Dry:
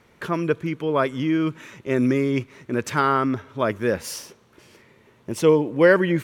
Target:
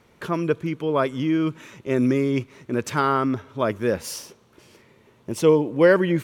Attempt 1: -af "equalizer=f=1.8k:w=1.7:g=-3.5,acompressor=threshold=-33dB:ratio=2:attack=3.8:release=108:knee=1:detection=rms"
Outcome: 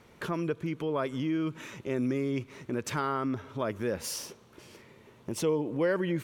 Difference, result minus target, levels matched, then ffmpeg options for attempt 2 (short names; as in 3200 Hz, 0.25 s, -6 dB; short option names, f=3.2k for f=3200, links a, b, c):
compressor: peak gain reduction +13 dB
-af "equalizer=f=1.8k:w=1.7:g=-3.5"